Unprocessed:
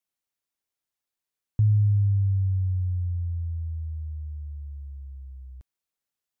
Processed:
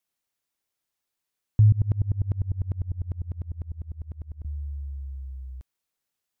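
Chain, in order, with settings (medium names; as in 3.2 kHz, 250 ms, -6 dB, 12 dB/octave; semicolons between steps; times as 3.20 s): 1.72–4.45 s: sawtooth tremolo in dB swelling 10 Hz, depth 29 dB; trim +4 dB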